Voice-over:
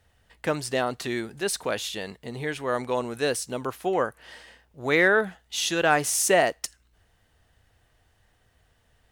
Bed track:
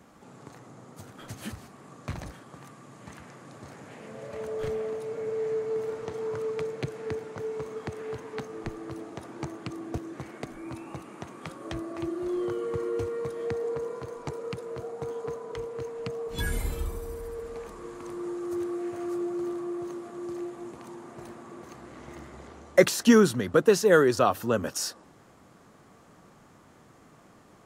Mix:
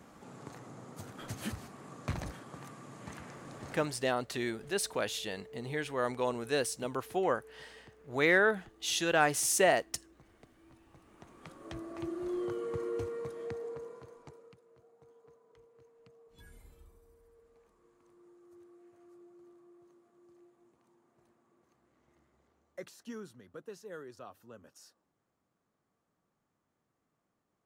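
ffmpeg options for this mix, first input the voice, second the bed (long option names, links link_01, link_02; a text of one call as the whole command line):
ffmpeg -i stem1.wav -i stem2.wav -filter_complex "[0:a]adelay=3300,volume=-5.5dB[link_01];[1:a]volume=16dB,afade=type=out:start_time=3.75:duration=0.27:silence=0.0841395,afade=type=in:start_time=10.92:duration=1.21:silence=0.149624,afade=type=out:start_time=12.95:duration=1.64:silence=0.0891251[link_02];[link_01][link_02]amix=inputs=2:normalize=0" out.wav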